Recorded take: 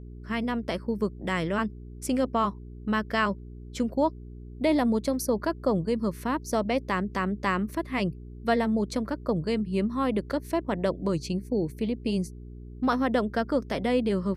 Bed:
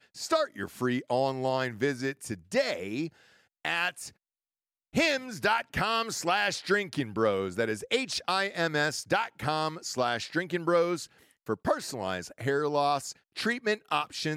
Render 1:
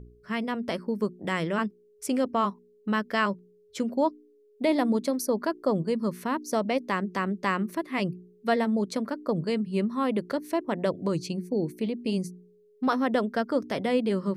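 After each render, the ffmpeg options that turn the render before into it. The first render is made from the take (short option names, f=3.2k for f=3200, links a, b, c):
-af "bandreject=f=60:t=h:w=4,bandreject=f=120:t=h:w=4,bandreject=f=180:t=h:w=4,bandreject=f=240:t=h:w=4,bandreject=f=300:t=h:w=4,bandreject=f=360:t=h:w=4"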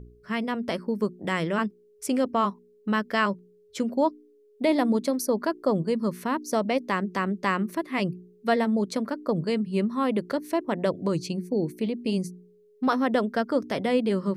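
-af "volume=1.5dB"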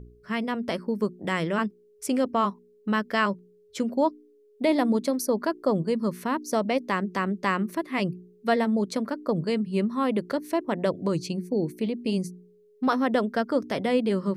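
-af anull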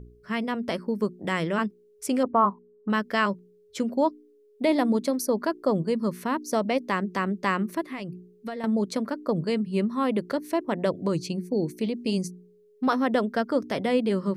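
-filter_complex "[0:a]asettb=1/sr,asplit=3[a][b][c];[a]atrim=end=2.234[d];[b]atrim=start=2.23:end=2.9,asetpts=PTS-STARTPTS,afade=t=in:d=0.004:c=qsin,afade=t=out:st=0.666:d=0.004:c=qsin,lowpass=f=1.1k:t=q:w=1.7[e];[c]atrim=start=2.896[f];[d][e]acrossfade=d=0.004:c1=hsin:c2=qsin[g];[g][f]acrossfade=d=0.004:c1=qsin:c2=hsin,asettb=1/sr,asplit=3[h][i][j];[h]atrim=end=7.864[k];[i]atrim=start=7.86:end=8.64,asetpts=PTS-STARTPTS,afade=t=in:d=0.004:c=qsin,afade=t=out:st=0.776:d=0.004:c=qsin,acompressor=threshold=-30dB:ratio=12:attack=3.2:release=140:knee=1:detection=peak[l];[j]atrim=start=8.636[m];[k][l]acrossfade=d=0.004:c1=hsin:c2=qsin[n];[n][m]acrossfade=d=0.004:c1=qsin:c2=hsin,asettb=1/sr,asplit=3[o][p][q];[o]atrim=end=11.534[r];[p]atrim=start=11.53:end=12.28,asetpts=PTS-STARTPTS,afade=t=in:d=0.004:c=qsin,afade=t=out:st=0.746:d=0.004:c=qsin,equalizer=f=6.1k:w=1.1:g=6.5[s];[q]atrim=start=12.276[t];[r][s]acrossfade=d=0.004:c1=hsin:c2=qsin[u];[u][t]acrossfade=d=0.004:c1=qsin:c2=hsin"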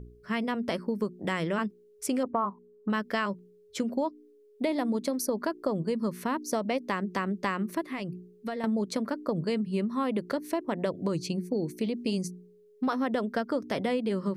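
-af "acompressor=threshold=-25dB:ratio=6"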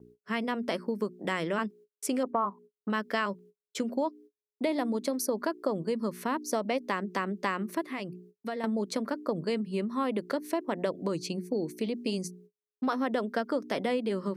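-af "agate=range=-42dB:threshold=-50dB:ratio=16:detection=peak,highpass=210"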